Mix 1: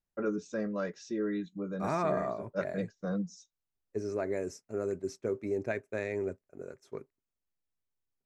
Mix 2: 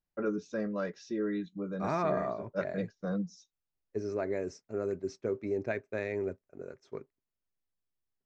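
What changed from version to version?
master: add LPF 5900 Hz 24 dB/oct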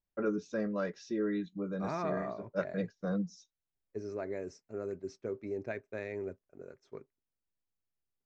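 second voice -5.0 dB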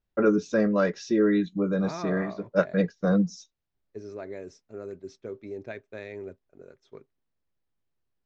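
first voice +11.0 dB; second voice: add bell 3500 Hz +10 dB 0.46 oct

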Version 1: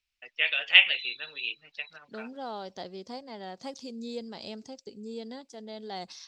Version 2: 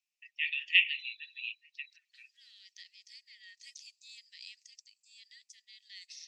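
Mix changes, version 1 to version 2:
first voice -4.5 dB; master: add rippled Chebyshev high-pass 1800 Hz, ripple 6 dB

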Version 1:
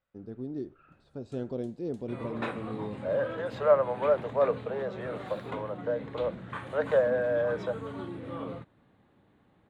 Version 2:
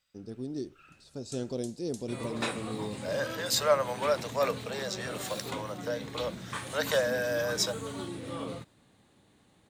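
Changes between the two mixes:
second voice: add tilt +4.5 dB/oct; master: remove EQ curve 1500 Hz 0 dB, 3400 Hz -9 dB, 5500 Hz -22 dB

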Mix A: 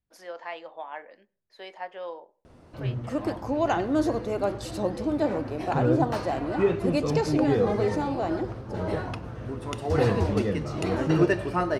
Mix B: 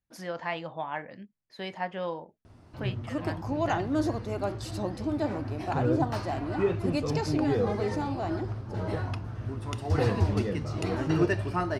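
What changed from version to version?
first voice: remove ladder high-pass 330 Hz, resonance 25%; background: add thirty-one-band EQ 100 Hz +11 dB, 500 Hz -9 dB, 5000 Hz +3 dB; reverb: off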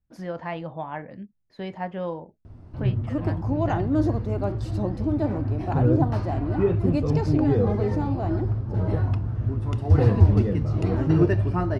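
master: add tilt -3 dB/oct

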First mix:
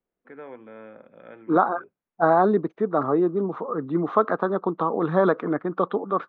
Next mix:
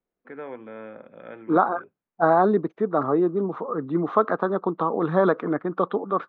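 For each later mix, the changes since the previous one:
first voice +4.0 dB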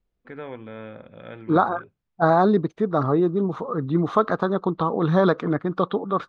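master: remove three-band isolator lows -20 dB, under 190 Hz, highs -19 dB, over 2600 Hz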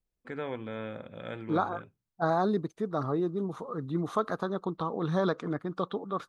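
second voice -9.5 dB; master: remove LPF 3500 Hz 12 dB/oct

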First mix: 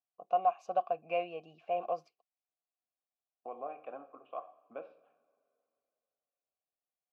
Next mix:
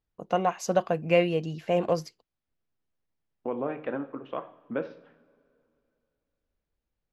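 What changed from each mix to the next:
master: remove vowel filter a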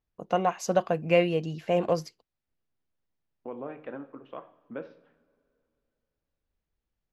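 second voice -7.0 dB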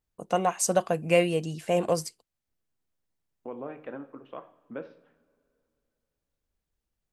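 first voice: remove running mean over 5 samples

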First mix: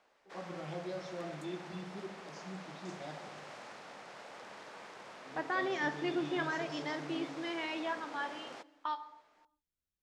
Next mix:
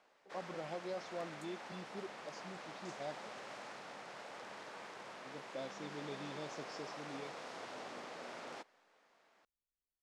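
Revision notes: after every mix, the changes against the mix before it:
second voice: muted; reverb: off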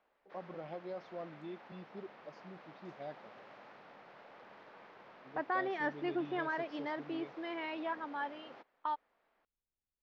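second voice: unmuted; background -4.5 dB; master: add air absorption 270 m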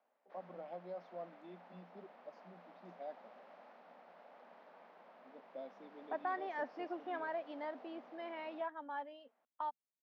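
second voice: entry +0.75 s; master: add rippled Chebyshev high-pass 170 Hz, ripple 9 dB

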